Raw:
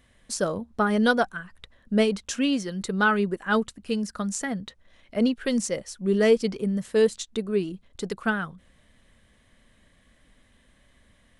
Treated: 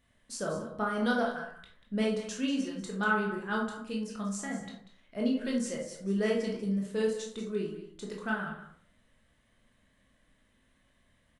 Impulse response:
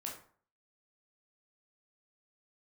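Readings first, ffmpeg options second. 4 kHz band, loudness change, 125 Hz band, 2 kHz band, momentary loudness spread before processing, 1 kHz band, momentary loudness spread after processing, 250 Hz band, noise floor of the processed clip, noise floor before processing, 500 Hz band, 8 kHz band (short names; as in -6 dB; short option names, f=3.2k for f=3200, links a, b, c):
-8.0 dB, -7.0 dB, -6.0 dB, -6.5 dB, 13 LU, -6.5 dB, 11 LU, -6.5 dB, -70 dBFS, -62 dBFS, -8.5 dB, -8.5 dB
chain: -filter_complex "[0:a]aecho=1:1:190:0.237[a];[1:a]atrim=start_sample=2205[b];[a][b]afir=irnorm=-1:irlink=0,volume=-6dB"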